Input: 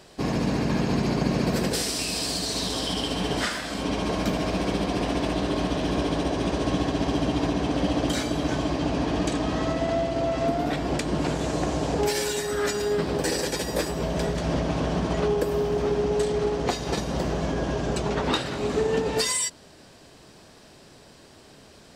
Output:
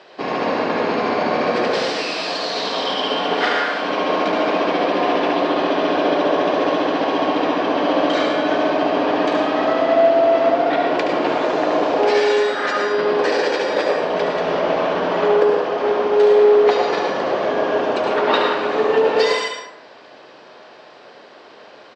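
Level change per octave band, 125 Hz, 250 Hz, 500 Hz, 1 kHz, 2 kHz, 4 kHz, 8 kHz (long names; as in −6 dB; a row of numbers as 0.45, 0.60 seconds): −10.0 dB, +3.0 dB, +10.5 dB, +12.0 dB, +10.5 dB, +5.0 dB, can't be measured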